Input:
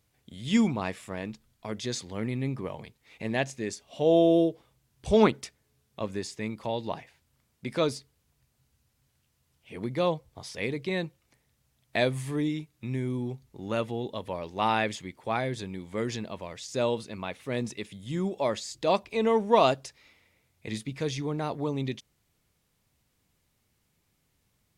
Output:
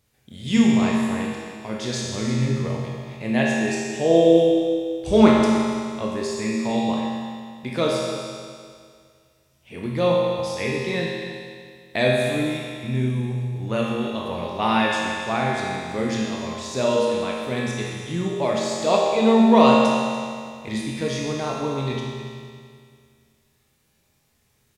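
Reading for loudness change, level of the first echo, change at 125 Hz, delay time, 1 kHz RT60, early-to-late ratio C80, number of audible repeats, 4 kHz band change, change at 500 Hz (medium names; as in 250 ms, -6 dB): +7.5 dB, -12.5 dB, +7.5 dB, 289 ms, 2.1 s, 0.0 dB, 1, +8.0 dB, +7.5 dB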